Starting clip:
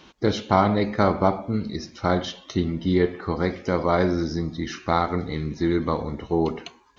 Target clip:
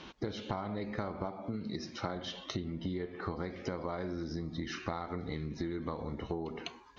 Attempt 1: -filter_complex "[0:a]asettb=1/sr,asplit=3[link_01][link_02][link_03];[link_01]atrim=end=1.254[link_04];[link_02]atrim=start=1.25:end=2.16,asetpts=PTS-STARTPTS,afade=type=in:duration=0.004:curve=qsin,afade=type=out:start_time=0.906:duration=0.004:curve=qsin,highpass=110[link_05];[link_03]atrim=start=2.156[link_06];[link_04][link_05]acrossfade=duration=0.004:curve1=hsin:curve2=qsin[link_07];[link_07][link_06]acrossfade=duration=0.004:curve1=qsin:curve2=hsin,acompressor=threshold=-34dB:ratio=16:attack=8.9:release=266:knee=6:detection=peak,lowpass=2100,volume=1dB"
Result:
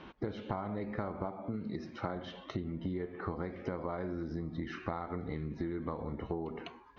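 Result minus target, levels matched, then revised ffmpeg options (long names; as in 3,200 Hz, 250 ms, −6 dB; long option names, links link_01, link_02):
4,000 Hz band −8.5 dB
-filter_complex "[0:a]asettb=1/sr,asplit=3[link_01][link_02][link_03];[link_01]atrim=end=1.254[link_04];[link_02]atrim=start=1.25:end=2.16,asetpts=PTS-STARTPTS,afade=type=in:duration=0.004:curve=qsin,afade=type=out:start_time=0.906:duration=0.004:curve=qsin,highpass=110[link_05];[link_03]atrim=start=2.156[link_06];[link_04][link_05]acrossfade=duration=0.004:curve1=hsin:curve2=qsin[link_07];[link_07][link_06]acrossfade=duration=0.004:curve1=qsin:curve2=hsin,acompressor=threshold=-34dB:ratio=16:attack=8.9:release=266:knee=6:detection=peak,lowpass=5500,volume=1dB"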